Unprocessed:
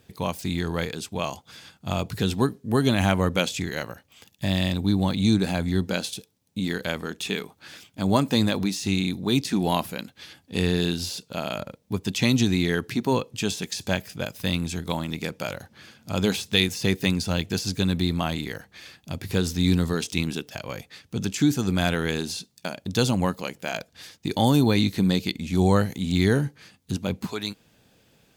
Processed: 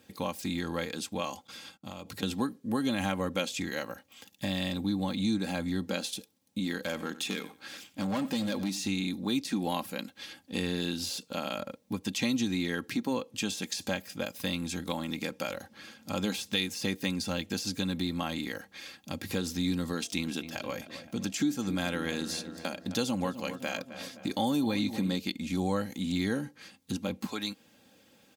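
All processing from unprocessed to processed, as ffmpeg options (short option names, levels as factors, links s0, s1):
-filter_complex "[0:a]asettb=1/sr,asplit=3[s0][s1][s2];[s0]atrim=end=1.474[s3];[s1]atrim=start=1.47:end=2.23,asetpts=PTS-STARTPTS,afade=t=in:d=0.004:c=qsin,afade=t=out:st=0.756:d=0.004:c=qsin,agate=range=0.112:threshold=0.00141:ratio=16:release=100:detection=peak,bandreject=f=1700:w=11,acompressor=threshold=0.02:ratio=16:attack=3.2:release=140:knee=1:detection=peak[s4];[s2]atrim=start=2.226[s5];[s3][s4]acrossfade=d=0.004:c1=hsin:c2=qsin[s6];[s6][s5]acrossfade=d=0.004:c1=qsin:c2=hsin,asettb=1/sr,asplit=3[s7][s8][s9];[s7]atrim=end=6.814[s10];[s8]atrim=start=6.81:end=8.85,asetpts=PTS-STARTPTS,afade=t=in:d=0.004:c=qsin,afade=t=out:st=2.036:d=0.004:c=qsin,asoftclip=type=hard:threshold=0.0944,aecho=1:1:92|184:0.126|0.0201,atrim=end_sample=89964[s11];[s9]atrim=start=8.846[s12];[s10][s11]acrossfade=d=0.004:c1=hsin:c2=qsin[s13];[s13][s12]acrossfade=d=0.004:c1=qsin:c2=hsin,asettb=1/sr,asplit=3[s14][s15][s16];[s14]atrim=end=19.984[s17];[s15]atrim=start=19.98:end=25.15,asetpts=PTS-STARTPTS,afade=t=in:d=0.004:c=qsin,afade=t=out:st=5.166:d=0.004:c=qsin,aeval=exprs='val(0)+0.00224*sin(2*PI*680*n/s)':c=same,asplit=2[s18][s19];[s19]adelay=260,lowpass=f=2300:p=1,volume=0.2,asplit=2[s20][s21];[s21]adelay=260,lowpass=f=2300:p=1,volume=0.53,asplit=2[s22][s23];[s23]adelay=260,lowpass=f=2300:p=1,volume=0.53,asplit=2[s24][s25];[s25]adelay=260,lowpass=f=2300:p=1,volume=0.53,asplit=2[s26][s27];[s27]adelay=260,lowpass=f=2300:p=1,volume=0.53[s28];[s18][s20][s22][s24][s26][s28]amix=inputs=6:normalize=0,atrim=end_sample=227997[s29];[s16]atrim=start=25.146[s30];[s17][s29]acrossfade=d=0.004:c1=hsin:c2=qsin[s31];[s31][s30]acrossfade=d=0.004:c1=qsin:c2=hsin,highpass=120,aecho=1:1:3.7:0.56,acompressor=threshold=0.0282:ratio=2,volume=0.841"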